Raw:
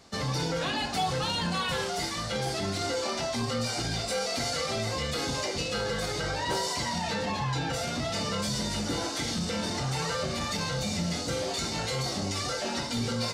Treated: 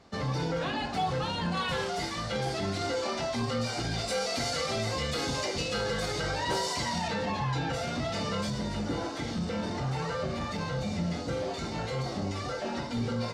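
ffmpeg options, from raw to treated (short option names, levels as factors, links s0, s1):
-af "asetnsamples=n=441:p=0,asendcmd='1.57 lowpass f 3700;3.98 lowpass f 7800;7.08 lowpass f 3100;8.5 lowpass f 1500',lowpass=f=2000:p=1"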